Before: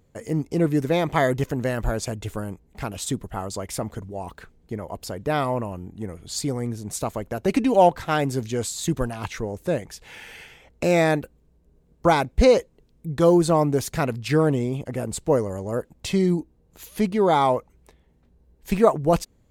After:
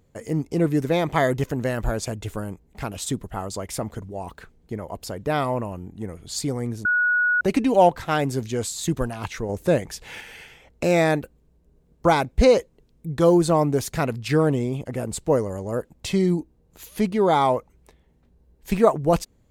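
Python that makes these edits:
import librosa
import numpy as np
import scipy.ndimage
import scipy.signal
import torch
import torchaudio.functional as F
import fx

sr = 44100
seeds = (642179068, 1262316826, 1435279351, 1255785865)

y = fx.edit(x, sr, fx.bleep(start_s=6.85, length_s=0.56, hz=1460.0, db=-17.0),
    fx.clip_gain(start_s=9.49, length_s=0.72, db=4.5), tone=tone)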